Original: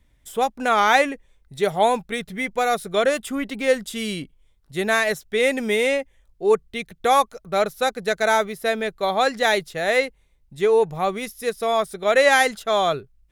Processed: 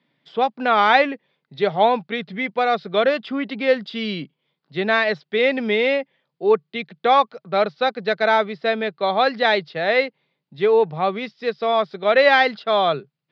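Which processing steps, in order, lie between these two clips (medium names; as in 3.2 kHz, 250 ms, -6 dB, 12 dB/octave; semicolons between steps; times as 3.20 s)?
Chebyshev band-pass 140–4800 Hz, order 5; trim +2 dB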